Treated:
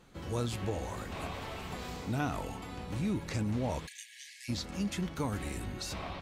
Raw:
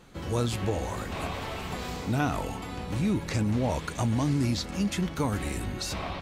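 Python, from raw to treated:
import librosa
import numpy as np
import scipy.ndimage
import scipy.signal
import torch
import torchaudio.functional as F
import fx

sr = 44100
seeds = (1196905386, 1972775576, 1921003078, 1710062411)

y = fx.brickwall_highpass(x, sr, low_hz=1600.0, at=(3.86, 4.48), fade=0.02)
y = y * librosa.db_to_amplitude(-6.0)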